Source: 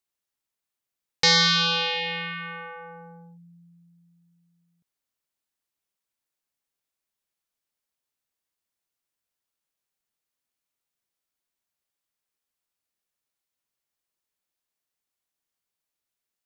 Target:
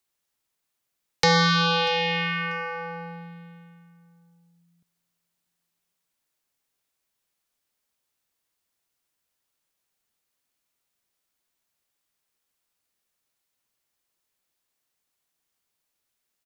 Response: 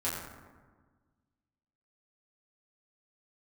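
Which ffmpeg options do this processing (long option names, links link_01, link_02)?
-filter_complex "[0:a]acrossover=split=140|730|1400[link_01][link_02][link_03][link_04];[link_04]acompressor=threshold=-32dB:ratio=5[link_05];[link_01][link_02][link_03][link_05]amix=inputs=4:normalize=0,aecho=1:1:640|1280:0.0841|0.0185,volume=6.5dB"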